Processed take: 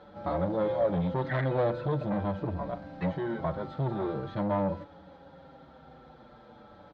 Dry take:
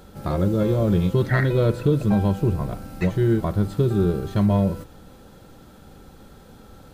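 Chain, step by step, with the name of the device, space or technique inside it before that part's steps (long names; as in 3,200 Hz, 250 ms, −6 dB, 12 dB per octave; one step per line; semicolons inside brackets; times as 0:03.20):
barber-pole flanger into a guitar amplifier (barber-pole flanger 6.4 ms −0.45 Hz; soft clipping −21 dBFS, distortion −11 dB; loudspeaker in its box 100–3,600 Hz, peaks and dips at 110 Hz −10 dB, 210 Hz −6 dB, 400 Hz −8 dB, 570 Hz +6 dB, 870 Hz +5 dB, 2,700 Hz −8 dB)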